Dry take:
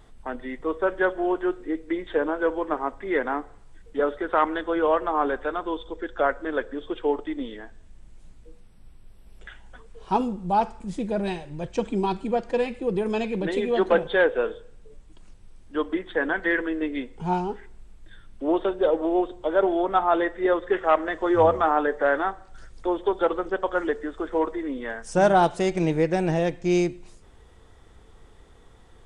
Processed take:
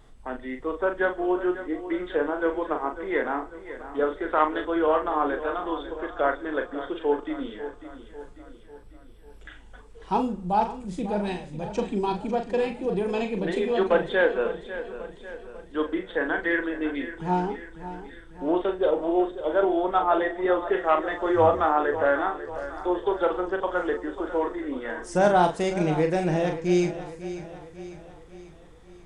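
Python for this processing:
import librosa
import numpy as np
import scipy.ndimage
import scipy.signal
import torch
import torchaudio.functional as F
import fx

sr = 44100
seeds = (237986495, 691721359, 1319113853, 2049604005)

y = fx.doubler(x, sr, ms=39.0, db=-6.5)
y = fx.echo_feedback(y, sr, ms=546, feedback_pct=52, wet_db=-13)
y = y * 10.0 ** (-2.0 / 20.0)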